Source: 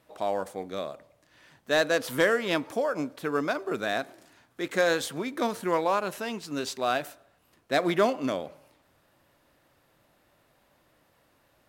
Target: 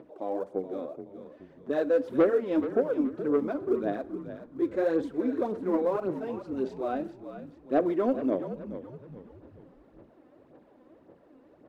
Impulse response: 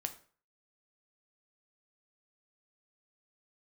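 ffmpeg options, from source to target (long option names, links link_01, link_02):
-filter_complex "[0:a]acompressor=mode=upward:threshold=-44dB:ratio=2.5,bandpass=frequency=350:width_type=q:width=2:csg=0,aphaser=in_gain=1:out_gain=1:delay=4:decay=0.61:speed=1.8:type=sinusoidal,asoftclip=type=tanh:threshold=-18dB,asplit=5[link_01][link_02][link_03][link_04][link_05];[link_02]adelay=424,afreqshift=-54,volume=-11dB[link_06];[link_03]adelay=848,afreqshift=-108,volume=-19dB[link_07];[link_04]adelay=1272,afreqshift=-162,volume=-26.9dB[link_08];[link_05]adelay=1696,afreqshift=-216,volume=-34.9dB[link_09];[link_01][link_06][link_07][link_08][link_09]amix=inputs=5:normalize=0,asplit=2[link_10][link_11];[1:a]atrim=start_sample=2205[link_12];[link_11][link_12]afir=irnorm=-1:irlink=0,volume=-6dB[link_13];[link_10][link_13]amix=inputs=2:normalize=0"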